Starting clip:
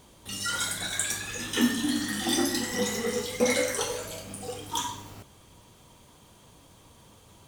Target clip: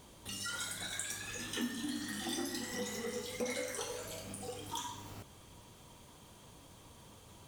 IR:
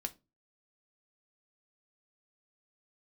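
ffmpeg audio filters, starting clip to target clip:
-af "acompressor=threshold=-42dB:ratio=2,volume=-2dB"

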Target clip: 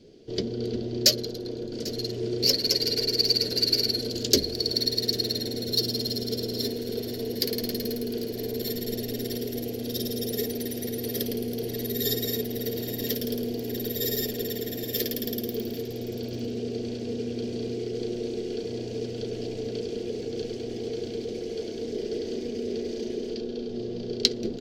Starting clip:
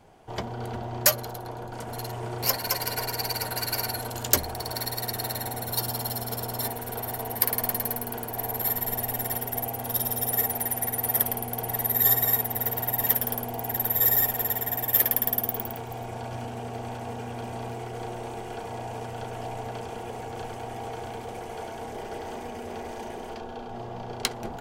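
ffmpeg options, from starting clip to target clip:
ffmpeg -i in.wav -filter_complex "[0:a]firequalizer=gain_entry='entry(100,0);entry(240,10);entry(430,12);entry(830,-23);entry(1700,-7);entry(4500,14);entry(8700,-9)':delay=0.05:min_phase=1,asplit=2[link_01][link_02];[link_02]aecho=0:1:795:0.126[link_03];[link_01][link_03]amix=inputs=2:normalize=0,volume=-2dB" out.wav

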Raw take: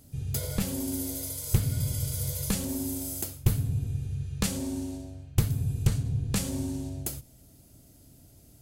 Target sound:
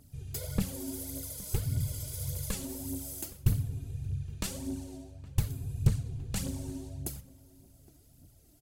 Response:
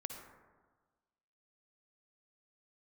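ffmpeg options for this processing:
-filter_complex "[0:a]aphaser=in_gain=1:out_gain=1:delay=3.4:decay=0.57:speed=1.7:type=triangular,asplit=2[link_01][link_02];[link_02]adelay=816.3,volume=-20dB,highshelf=frequency=4000:gain=-18.4[link_03];[link_01][link_03]amix=inputs=2:normalize=0,volume=-7.5dB"

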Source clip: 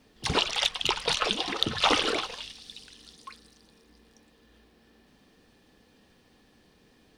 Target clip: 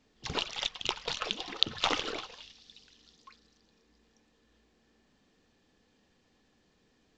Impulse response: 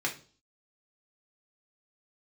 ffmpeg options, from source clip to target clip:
-af "aeval=exprs='0.562*(cos(1*acos(clip(val(0)/0.562,-1,1)))-cos(1*PI/2))+0.141*(cos(3*acos(clip(val(0)/0.562,-1,1)))-cos(3*PI/2))+0.00708*(cos(8*acos(clip(val(0)/0.562,-1,1)))-cos(8*PI/2))':channel_layout=same,volume=2dB" -ar 16000 -c:a pcm_mulaw

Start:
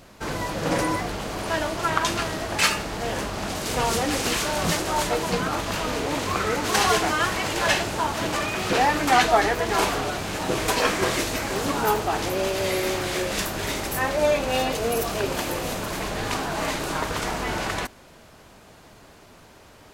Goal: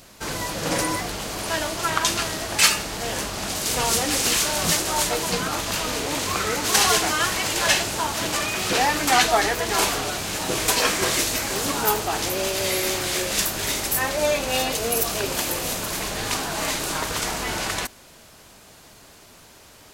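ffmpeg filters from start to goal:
ffmpeg -i in.wav -af "highshelf=frequency=3200:gain=11.5,volume=-2dB" out.wav

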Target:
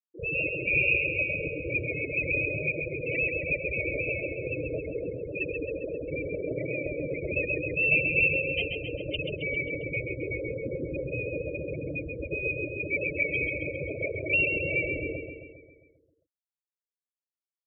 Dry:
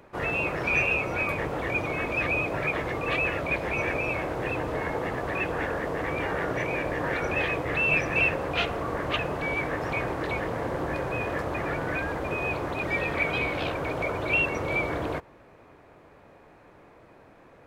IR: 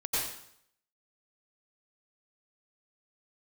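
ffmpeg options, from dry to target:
-af "asuperstop=centerf=1100:order=12:qfactor=0.89,afftfilt=real='re*gte(hypot(re,im),0.126)':imag='im*gte(hypot(re,im),0.126)':win_size=1024:overlap=0.75,aecho=1:1:134|268|402|536|670|804|938|1072:0.501|0.291|0.169|0.0978|0.0567|0.0329|0.0191|0.0111"

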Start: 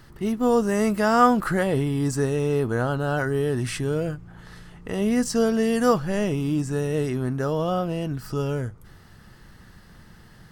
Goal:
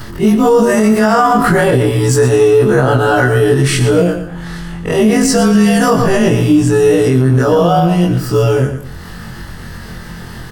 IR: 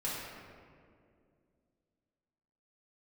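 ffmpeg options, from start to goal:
-filter_complex "[0:a]afftfilt=real='re':imag='-im':win_size=2048:overlap=0.75,bandreject=frequency=268.7:width_type=h:width=4,bandreject=frequency=537.4:width_type=h:width=4,bandreject=frequency=806.1:width_type=h:width=4,bandreject=frequency=1074.8:width_type=h:width=4,bandreject=frequency=1343.5:width_type=h:width=4,bandreject=frequency=1612.2:width_type=h:width=4,asplit=2[link_01][link_02];[link_02]aecho=0:1:117|234|351:0.316|0.0917|0.0266[link_03];[link_01][link_03]amix=inputs=2:normalize=0,acompressor=mode=upward:threshold=-40dB:ratio=2.5,alimiter=level_in=20.5dB:limit=-1dB:release=50:level=0:latency=1,volume=-1dB"

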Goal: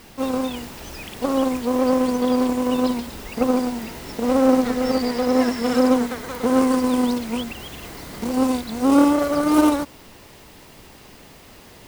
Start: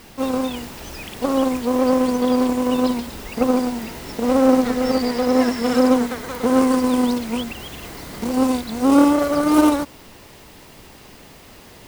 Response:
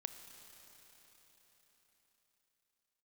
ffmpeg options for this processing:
-af "volume=-1.5dB"

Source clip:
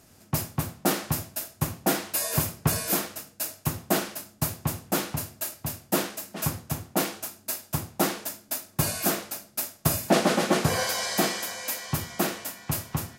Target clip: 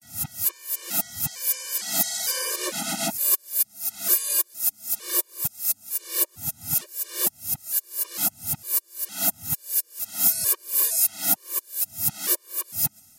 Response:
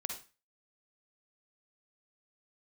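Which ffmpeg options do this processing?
-af "areverse,crystalizer=i=6:c=0,afftfilt=real='re*gt(sin(2*PI*1.1*pts/sr)*(1-2*mod(floor(b*sr/1024/310),2)),0)':imag='im*gt(sin(2*PI*1.1*pts/sr)*(1-2*mod(floor(b*sr/1024/310),2)),0)':win_size=1024:overlap=0.75,volume=-8dB"

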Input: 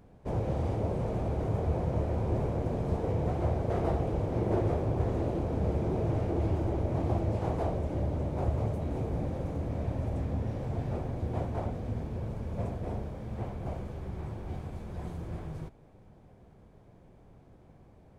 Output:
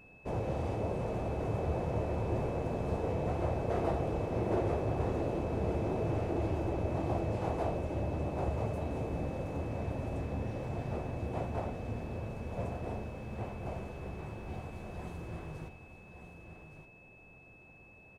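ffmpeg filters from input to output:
ffmpeg -i in.wav -filter_complex "[0:a]lowshelf=frequency=280:gain=-6,asplit=2[link_01][link_02];[link_02]aecho=0:1:1170:0.316[link_03];[link_01][link_03]amix=inputs=2:normalize=0,aeval=exprs='val(0)+0.00141*sin(2*PI*2600*n/s)':channel_layout=same" out.wav

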